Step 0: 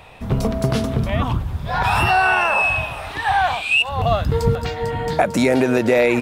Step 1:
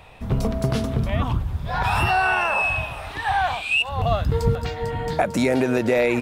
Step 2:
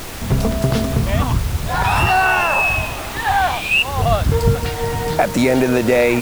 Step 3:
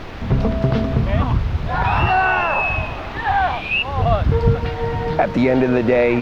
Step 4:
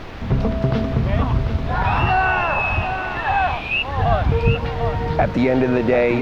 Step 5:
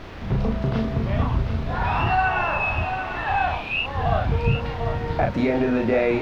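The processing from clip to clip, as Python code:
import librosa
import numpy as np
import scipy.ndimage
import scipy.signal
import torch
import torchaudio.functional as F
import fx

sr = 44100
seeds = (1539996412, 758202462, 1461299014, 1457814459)

y1 = fx.low_shelf(x, sr, hz=78.0, db=5.5)
y1 = y1 * 10.0 ** (-4.0 / 20.0)
y2 = fx.dmg_noise_colour(y1, sr, seeds[0], colour='pink', level_db=-35.0)
y2 = y2 * 10.0 ** (5.0 / 20.0)
y3 = fx.air_absorb(y2, sr, metres=280.0)
y4 = y3 + 10.0 ** (-8.0 / 20.0) * np.pad(y3, (int(744 * sr / 1000.0), 0))[:len(y3)]
y4 = y4 * 10.0 ** (-1.5 / 20.0)
y5 = fx.doubler(y4, sr, ms=36.0, db=-3)
y5 = y5 * 10.0 ** (-5.5 / 20.0)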